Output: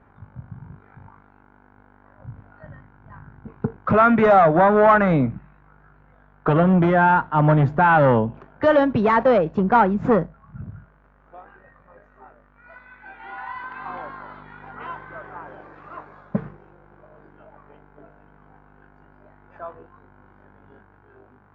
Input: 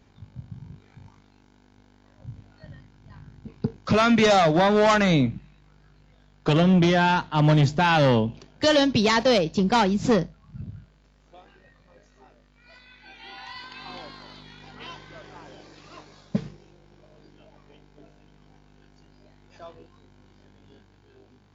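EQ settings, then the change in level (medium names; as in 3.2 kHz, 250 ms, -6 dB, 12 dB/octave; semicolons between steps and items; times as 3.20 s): dynamic bell 1.4 kHz, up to -5 dB, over -35 dBFS, Q 0.71; FFT filter 310 Hz 0 dB, 1.4 kHz +11 dB, 4.9 kHz -27 dB; +1.5 dB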